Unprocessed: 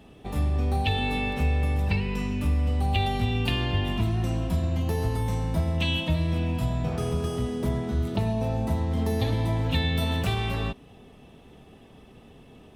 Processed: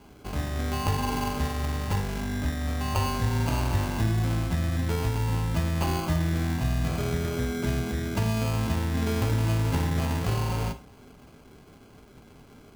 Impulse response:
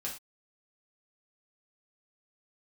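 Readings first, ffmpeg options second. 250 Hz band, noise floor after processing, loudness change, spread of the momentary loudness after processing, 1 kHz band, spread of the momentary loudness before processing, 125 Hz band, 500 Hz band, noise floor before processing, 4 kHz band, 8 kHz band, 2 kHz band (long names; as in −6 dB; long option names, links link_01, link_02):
−0.5 dB, −52 dBFS, −1.0 dB, 4 LU, +0.5 dB, 3 LU, −0.5 dB, −1.5 dB, −51 dBFS, −4.5 dB, +7.5 dB, −1.5 dB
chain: -filter_complex "[0:a]acrusher=samples=24:mix=1:aa=0.000001,bandreject=frequency=70.62:width_type=h:width=4,bandreject=frequency=141.24:width_type=h:width=4,bandreject=frequency=211.86:width_type=h:width=4,bandreject=frequency=282.48:width_type=h:width=4,bandreject=frequency=353.1:width_type=h:width=4,bandreject=frequency=423.72:width_type=h:width=4,bandreject=frequency=494.34:width_type=h:width=4,bandreject=frequency=564.96:width_type=h:width=4,bandreject=frequency=635.58:width_type=h:width=4,bandreject=frequency=706.2:width_type=h:width=4,bandreject=frequency=776.82:width_type=h:width=4,bandreject=frequency=847.44:width_type=h:width=4,bandreject=frequency=918.06:width_type=h:width=4,bandreject=frequency=988.68:width_type=h:width=4,bandreject=frequency=1059.3:width_type=h:width=4,bandreject=frequency=1129.92:width_type=h:width=4,bandreject=frequency=1200.54:width_type=h:width=4,asplit=2[link_01][link_02];[1:a]atrim=start_sample=2205[link_03];[link_02][link_03]afir=irnorm=-1:irlink=0,volume=-5.5dB[link_04];[link_01][link_04]amix=inputs=2:normalize=0,volume=-3.5dB"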